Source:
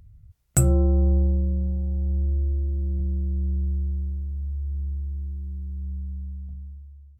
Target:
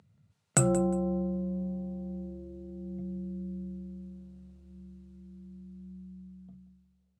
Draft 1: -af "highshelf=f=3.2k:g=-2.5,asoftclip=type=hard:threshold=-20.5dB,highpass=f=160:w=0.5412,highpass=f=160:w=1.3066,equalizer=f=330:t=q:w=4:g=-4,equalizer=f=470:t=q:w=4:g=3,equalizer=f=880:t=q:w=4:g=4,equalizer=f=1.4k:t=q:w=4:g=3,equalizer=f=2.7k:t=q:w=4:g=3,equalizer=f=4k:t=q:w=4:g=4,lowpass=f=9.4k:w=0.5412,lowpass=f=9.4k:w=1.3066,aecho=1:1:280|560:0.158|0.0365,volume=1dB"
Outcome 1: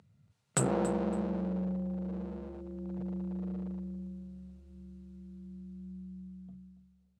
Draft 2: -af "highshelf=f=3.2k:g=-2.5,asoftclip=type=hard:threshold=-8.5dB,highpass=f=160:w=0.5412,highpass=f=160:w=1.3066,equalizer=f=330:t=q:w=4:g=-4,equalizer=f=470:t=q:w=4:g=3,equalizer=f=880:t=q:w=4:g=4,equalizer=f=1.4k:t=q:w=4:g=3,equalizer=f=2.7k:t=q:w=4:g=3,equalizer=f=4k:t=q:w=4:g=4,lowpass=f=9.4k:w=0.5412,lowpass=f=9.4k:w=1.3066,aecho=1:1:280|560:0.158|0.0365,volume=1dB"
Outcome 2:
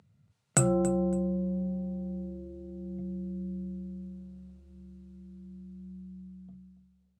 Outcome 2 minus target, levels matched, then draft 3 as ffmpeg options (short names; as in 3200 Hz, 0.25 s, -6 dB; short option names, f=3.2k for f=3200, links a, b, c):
echo 0.101 s late
-af "highshelf=f=3.2k:g=-2.5,asoftclip=type=hard:threshold=-8.5dB,highpass=f=160:w=0.5412,highpass=f=160:w=1.3066,equalizer=f=330:t=q:w=4:g=-4,equalizer=f=470:t=q:w=4:g=3,equalizer=f=880:t=q:w=4:g=4,equalizer=f=1.4k:t=q:w=4:g=3,equalizer=f=2.7k:t=q:w=4:g=3,equalizer=f=4k:t=q:w=4:g=4,lowpass=f=9.4k:w=0.5412,lowpass=f=9.4k:w=1.3066,aecho=1:1:179|358:0.158|0.0365,volume=1dB"